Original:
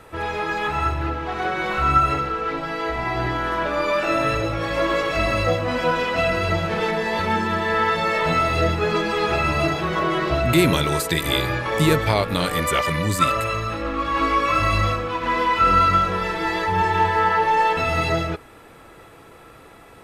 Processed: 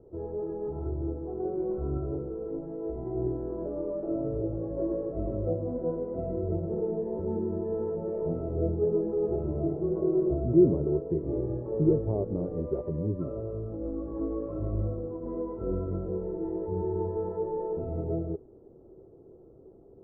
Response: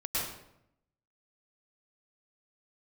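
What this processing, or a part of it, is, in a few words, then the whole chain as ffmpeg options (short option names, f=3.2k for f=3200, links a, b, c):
under water: -af "lowpass=f=550:w=0.5412,lowpass=f=550:w=1.3066,equalizer=f=380:t=o:w=0.29:g=11.5,volume=-7.5dB"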